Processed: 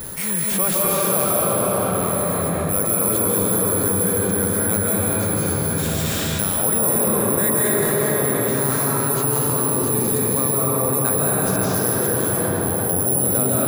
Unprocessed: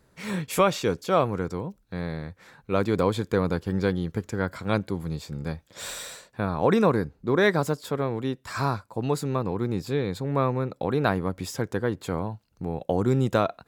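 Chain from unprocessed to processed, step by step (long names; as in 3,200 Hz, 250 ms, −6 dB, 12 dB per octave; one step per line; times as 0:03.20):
bad sample-rate conversion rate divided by 4×, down none, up zero stuff
convolution reverb RT60 5.7 s, pre-delay 115 ms, DRR −8 dB
envelope flattener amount 70%
level −9 dB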